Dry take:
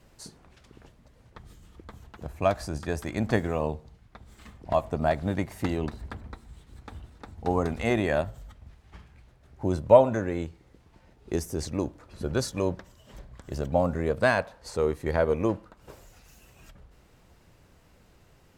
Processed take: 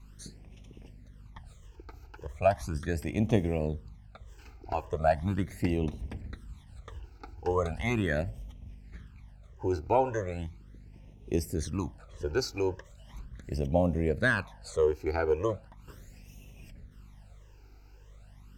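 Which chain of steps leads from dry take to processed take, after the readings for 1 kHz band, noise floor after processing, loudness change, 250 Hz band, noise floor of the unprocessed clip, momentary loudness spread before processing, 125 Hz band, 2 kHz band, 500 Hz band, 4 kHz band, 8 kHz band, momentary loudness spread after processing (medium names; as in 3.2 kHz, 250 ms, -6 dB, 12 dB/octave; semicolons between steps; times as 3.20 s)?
-3.0 dB, -54 dBFS, -3.0 dB, -2.5 dB, -59 dBFS, 18 LU, -0.5 dB, -1.0 dB, -4.5 dB, -2.5 dB, -3.5 dB, 21 LU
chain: hum 50 Hz, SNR 23 dB; phase shifter stages 12, 0.38 Hz, lowest notch 180–1500 Hz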